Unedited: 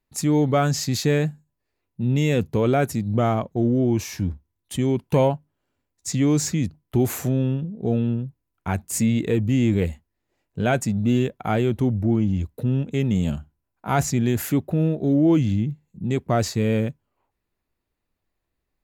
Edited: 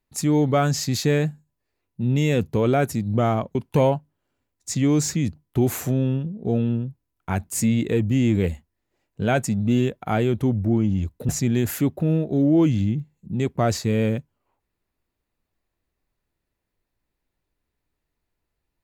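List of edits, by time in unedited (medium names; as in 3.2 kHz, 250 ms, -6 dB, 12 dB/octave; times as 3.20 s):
3.55–4.93 s: delete
12.67–14.00 s: delete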